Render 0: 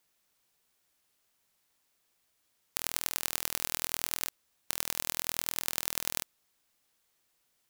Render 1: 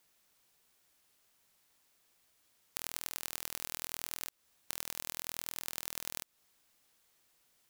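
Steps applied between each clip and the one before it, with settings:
downward compressor 6 to 1, threshold −35 dBFS, peak gain reduction 10.5 dB
level +3 dB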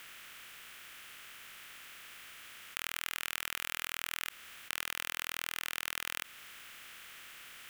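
compressor on every frequency bin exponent 0.4
flat-topped bell 2,000 Hz +12 dB
level −4 dB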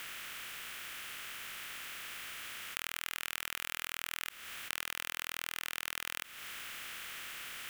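downward compressor 2 to 1, threshold −44 dBFS, peak gain reduction 8 dB
level +6.5 dB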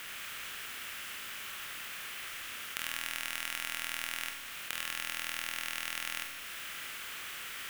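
four-comb reverb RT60 1.2 s, combs from 28 ms, DRR 1.5 dB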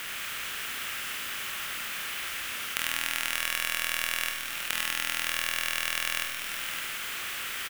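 single-tap delay 564 ms −9 dB
level +7 dB

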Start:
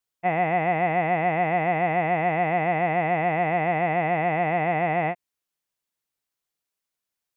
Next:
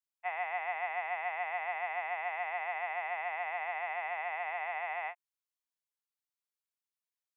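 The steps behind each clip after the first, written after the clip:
Chebyshev high-pass filter 900 Hz, order 3
expander for the loud parts 1.5 to 1, over −37 dBFS
level −6 dB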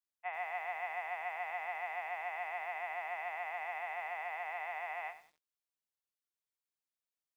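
feedback echo at a low word length 96 ms, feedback 35%, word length 9 bits, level −13 dB
level −4 dB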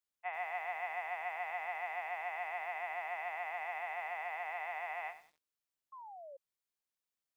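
sound drawn into the spectrogram fall, 0:05.92–0:06.37, 530–1,100 Hz −50 dBFS

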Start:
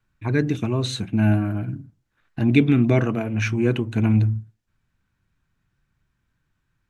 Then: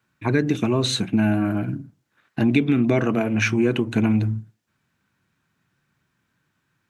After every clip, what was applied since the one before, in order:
high-pass filter 160 Hz 12 dB per octave
downward compressor 6 to 1, threshold −21 dBFS, peak gain reduction 10 dB
level +6 dB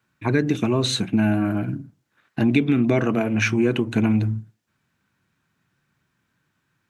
no processing that can be heard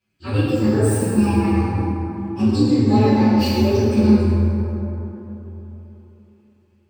partials spread apart or drawn together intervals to 128%
dense smooth reverb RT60 3.6 s, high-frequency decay 0.4×, DRR −8 dB
level −4 dB

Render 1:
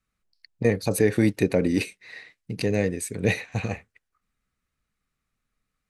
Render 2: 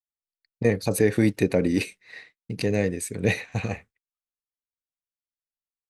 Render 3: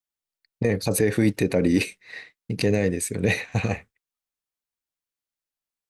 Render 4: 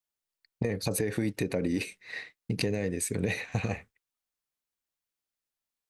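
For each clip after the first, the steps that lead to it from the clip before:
downward expander −41 dBFS
brickwall limiter −14 dBFS, peak gain reduction 7.5 dB; level +4 dB
downward compressor, threshold −26 dBFS, peak gain reduction 11 dB

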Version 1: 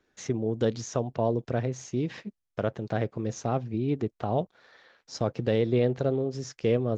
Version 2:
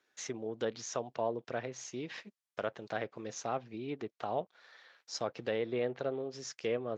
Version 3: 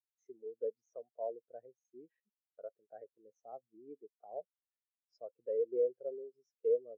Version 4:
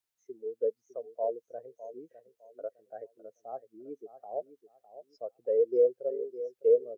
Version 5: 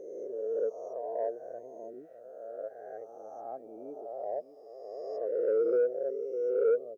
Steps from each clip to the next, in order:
treble cut that deepens with the level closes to 2,400 Hz, closed at −21 dBFS; high-pass filter 1,100 Hz 6 dB per octave
parametric band 470 Hz +4 dB 0.98 octaves; every bin expanded away from the loudest bin 2.5 to 1; level −3 dB
repeating echo 607 ms, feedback 26%, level −13.5 dB; level +8 dB
peak hold with a rise ahead of every peak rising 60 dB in 1.97 s; soft clipping −15 dBFS, distortion −21 dB; level −3.5 dB

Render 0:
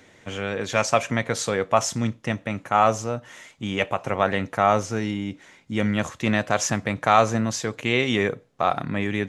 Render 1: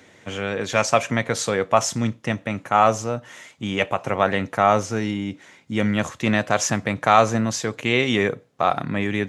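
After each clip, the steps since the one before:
high-pass filter 75 Hz
level +2 dB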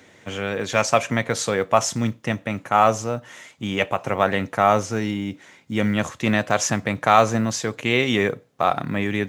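log-companded quantiser 8 bits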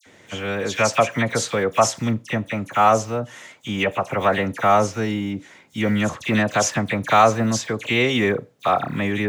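all-pass dispersion lows, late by 60 ms, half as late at 2,300 Hz
level +1 dB

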